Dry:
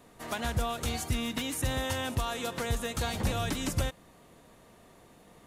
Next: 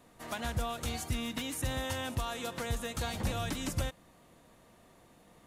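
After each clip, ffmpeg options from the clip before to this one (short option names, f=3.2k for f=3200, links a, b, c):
-af "bandreject=f=420:w=12,volume=-3.5dB"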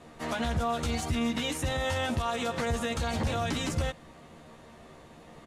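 -filter_complex "[0:a]asplit=2[a][b];[b]adelay=13,volume=-2.5dB[c];[a][c]amix=inputs=2:normalize=0,alimiter=level_in=5dB:limit=-24dB:level=0:latency=1:release=41,volume=-5dB,adynamicsmooth=sensitivity=4:basefreq=7.6k,volume=8dB"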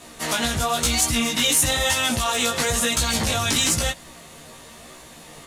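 -af "flanger=delay=16:depth=4.8:speed=1,crystalizer=i=6:c=0,volume=7dB"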